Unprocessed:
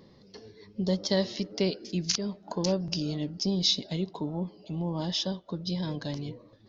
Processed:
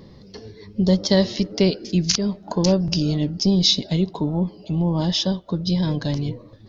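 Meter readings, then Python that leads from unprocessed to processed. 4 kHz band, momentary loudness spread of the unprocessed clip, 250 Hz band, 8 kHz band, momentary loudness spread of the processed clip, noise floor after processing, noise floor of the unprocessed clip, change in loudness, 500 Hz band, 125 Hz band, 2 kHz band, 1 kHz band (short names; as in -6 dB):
+7.5 dB, 10 LU, +10.5 dB, n/a, 8 LU, -46 dBFS, -57 dBFS, +9.5 dB, +8.5 dB, +11.5 dB, +7.5 dB, +7.5 dB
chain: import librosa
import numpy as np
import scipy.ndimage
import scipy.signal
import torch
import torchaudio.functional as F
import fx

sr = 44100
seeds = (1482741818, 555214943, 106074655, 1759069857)

y = fx.low_shelf(x, sr, hz=120.0, db=11.5)
y = F.gain(torch.from_numpy(y), 7.5).numpy()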